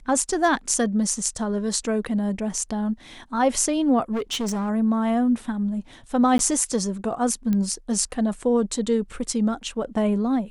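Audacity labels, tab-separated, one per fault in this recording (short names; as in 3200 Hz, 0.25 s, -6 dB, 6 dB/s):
4.120000	4.700000	clipped -22.5 dBFS
6.380000	6.390000	gap 12 ms
7.530000	7.530000	pop -14 dBFS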